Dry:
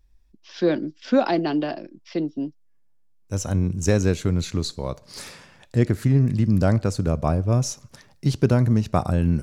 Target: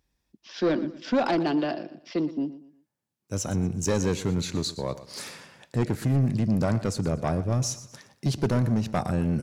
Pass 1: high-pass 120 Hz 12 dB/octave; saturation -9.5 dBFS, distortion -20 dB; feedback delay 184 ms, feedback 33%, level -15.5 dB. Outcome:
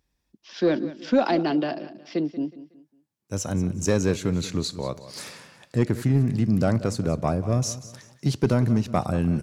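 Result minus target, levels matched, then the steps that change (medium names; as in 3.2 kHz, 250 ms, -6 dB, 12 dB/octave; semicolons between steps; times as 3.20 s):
echo 65 ms late; saturation: distortion -9 dB
change: saturation -17.5 dBFS, distortion -11 dB; change: feedback delay 119 ms, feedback 33%, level -15.5 dB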